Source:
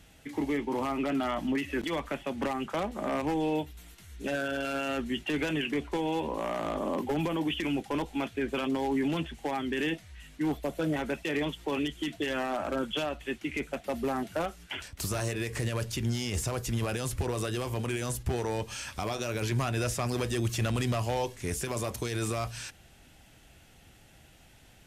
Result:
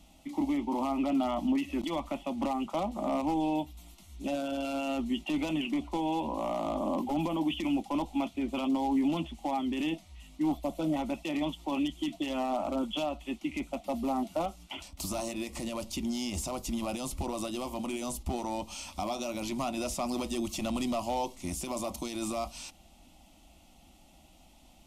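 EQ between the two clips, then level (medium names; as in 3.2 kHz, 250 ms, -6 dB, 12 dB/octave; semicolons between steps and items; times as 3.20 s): treble shelf 4.6 kHz -5.5 dB; static phaser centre 440 Hz, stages 6; +2.5 dB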